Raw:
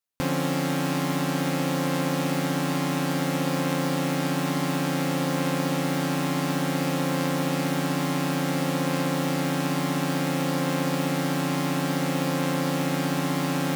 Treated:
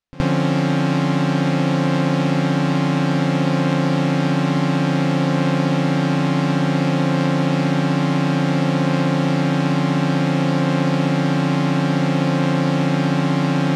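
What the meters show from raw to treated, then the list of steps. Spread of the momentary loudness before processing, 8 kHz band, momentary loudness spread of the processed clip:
0 LU, −3.5 dB, 0 LU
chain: low-pass filter 4,700 Hz 12 dB per octave
low-shelf EQ 150 Hz +10.5 dB
echo ahead of the sound 70 ms −19.5 dB
level +5 dB

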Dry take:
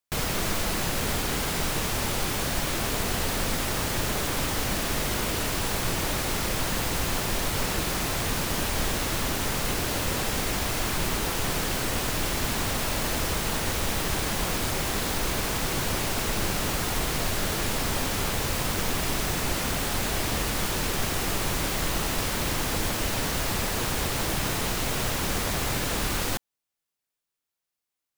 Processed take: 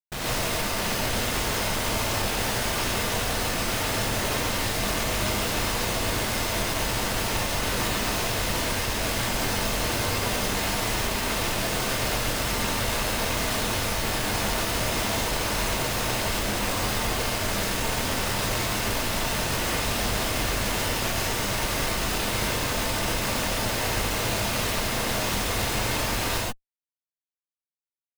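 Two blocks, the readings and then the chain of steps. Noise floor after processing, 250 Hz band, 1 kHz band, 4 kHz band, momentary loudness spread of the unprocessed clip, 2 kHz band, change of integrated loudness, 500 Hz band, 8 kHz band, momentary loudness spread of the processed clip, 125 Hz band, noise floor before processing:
below −85 dBFS, +0.5 dB, +2.5 dB, +2.5 dB, 0 LU, +2.5 dB, +1.5 dB, +2.5 dB, +1.0 dB, 1 LU, +0.5 dB, below −85 dBFS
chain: comparator with hysteresis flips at −34 dBFS
reverb whose tail is shaped and stops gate 160 ms rising, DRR −5.5 dB
level −5 dB

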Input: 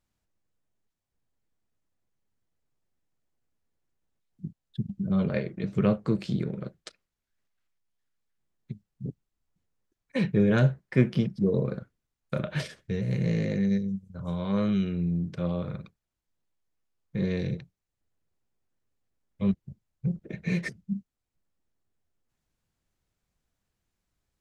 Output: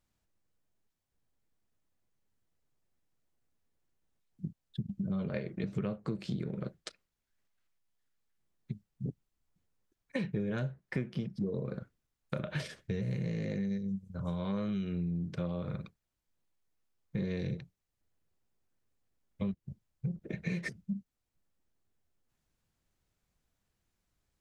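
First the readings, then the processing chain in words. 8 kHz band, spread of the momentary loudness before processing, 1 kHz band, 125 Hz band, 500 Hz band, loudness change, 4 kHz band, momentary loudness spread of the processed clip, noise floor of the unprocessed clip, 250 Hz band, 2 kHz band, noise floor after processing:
can't be measured, 15 LU, −7.5 dB, −8.0 dB, −9.0 dB, −8.5 dB, −6.0 dB, 10 LU, −85 dBFS, −8.5 dB, −6.5 dB, −85 dBFS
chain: downward compressor 10 to 1, threshold −31 dBFS, peak gain reduction 16.5 dB

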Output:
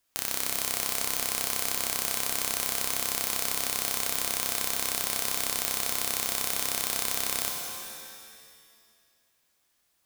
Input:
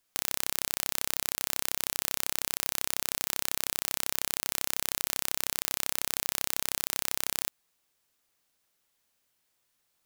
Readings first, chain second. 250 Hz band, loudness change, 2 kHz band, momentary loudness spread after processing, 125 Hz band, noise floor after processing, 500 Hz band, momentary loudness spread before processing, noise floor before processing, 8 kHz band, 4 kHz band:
+4.0 dB, +3.0 dB, +2.5 dB, 3 LU, +1.5 dB, −72 dBFS, +4.5 dB, 0 LU, −76 dBFS, +3.5 dB, +3.0 dB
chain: reverb with rising layers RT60 1.8 s, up +7 semitones, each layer −2 dB, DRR 1.5 dB

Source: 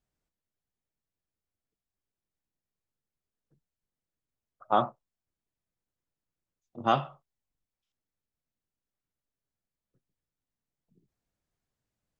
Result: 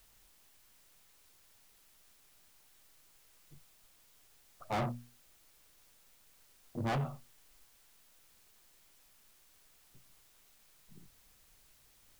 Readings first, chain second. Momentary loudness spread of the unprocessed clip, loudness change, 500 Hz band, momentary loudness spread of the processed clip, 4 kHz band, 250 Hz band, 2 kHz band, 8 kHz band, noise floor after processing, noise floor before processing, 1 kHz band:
9 LU, −9.0 dB, −9.0 dB, 13 LU, −7.5 dB, −3.0 dB, −3.0 dB, can't be measured, −66 dBFS, below −85 dBFS, −11.5 dB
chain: spectral tilt −4 dB per octave
mains-hum notches 60/120/180/240 Hz
soft clipping −30.5 dBFS, distortion −2 dB
background noise white −66 dBFS

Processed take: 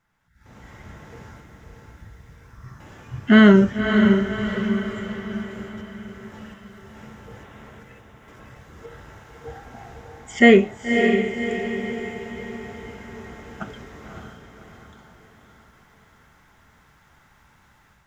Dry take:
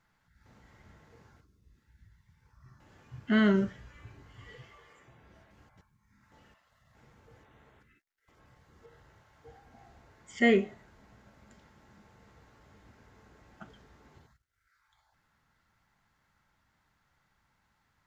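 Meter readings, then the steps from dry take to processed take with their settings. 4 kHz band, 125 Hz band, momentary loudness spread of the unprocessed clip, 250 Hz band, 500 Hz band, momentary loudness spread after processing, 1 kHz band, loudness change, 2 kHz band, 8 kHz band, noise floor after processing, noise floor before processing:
+13.5 dB, +14.5 dB, 11 LU, +14.0 dB, +13.5 dB, 24 LU, +14.0 dB, +8.0 dB, +13.5 dB, can't be measured, −57 dBFS, −75 dBFS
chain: parametric band 4,400 Hz −7.5 dB 0.21 octaves
automatic gain control gain up to 15.5 dB
on a send: feedback delay with all-pass diffusion 575 ms, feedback 49%, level −5 dB

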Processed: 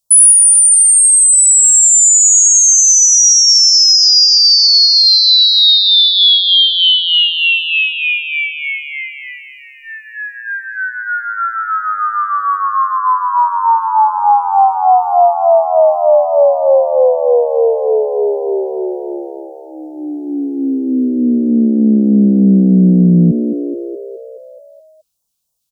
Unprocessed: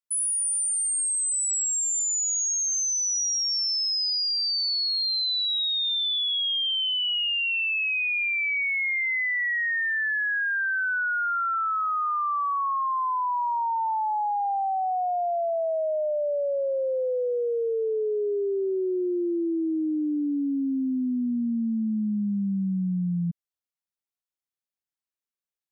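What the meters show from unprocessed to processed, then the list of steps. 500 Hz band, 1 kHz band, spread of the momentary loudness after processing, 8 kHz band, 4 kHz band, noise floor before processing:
+14.5 dB, +14.0 dB, 16 LU, +18.5 dB, +17.0 dB, below −85 dBFS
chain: all-pass phaser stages 2, 3.3 Hz, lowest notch 640–2,200 Hz
phaser with its sweep stopped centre 790 Hz, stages 4
on a send: echo with shifted repeats 212 ms, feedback 63%, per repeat +57 Hz, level −9.5 dB
on the sum: boost into a limiter +23.5 dB
level −1 dB

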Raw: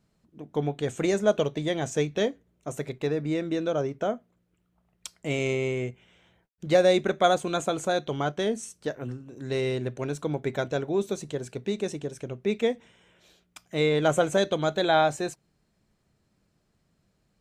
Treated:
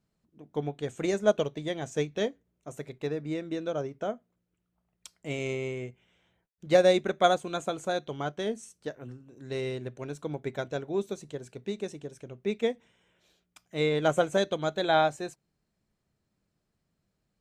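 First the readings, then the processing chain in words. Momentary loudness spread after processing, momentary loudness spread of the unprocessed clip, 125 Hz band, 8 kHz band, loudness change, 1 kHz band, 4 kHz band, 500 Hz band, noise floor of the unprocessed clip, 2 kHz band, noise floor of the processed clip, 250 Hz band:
17 LU, 13 LU, −5.0 dB, −6.0 dB, −3.0 dB, −2.0 dB, −3.0 dB, −3.0 dB, −72 dBFS, −3.0 dB, −80 dBFS, −4.5 dB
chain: expander for the loud parts 1.5 to 1, over −32 dBFS

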